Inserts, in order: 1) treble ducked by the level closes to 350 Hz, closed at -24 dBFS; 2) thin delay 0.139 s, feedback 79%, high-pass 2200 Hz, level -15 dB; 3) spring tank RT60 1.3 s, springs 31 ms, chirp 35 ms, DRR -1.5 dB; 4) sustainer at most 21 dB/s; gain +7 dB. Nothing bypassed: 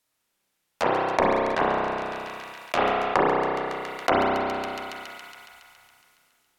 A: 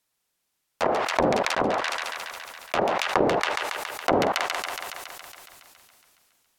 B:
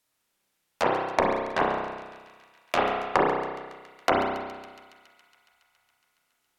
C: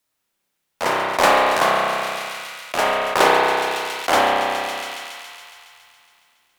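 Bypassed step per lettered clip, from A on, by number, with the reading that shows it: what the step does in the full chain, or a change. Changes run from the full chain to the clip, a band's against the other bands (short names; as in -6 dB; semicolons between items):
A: 3, 8 kHz band +9.0 dB; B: 4, crest factor change +3.0 dB; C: 1, 8 kHz band +10.5 dB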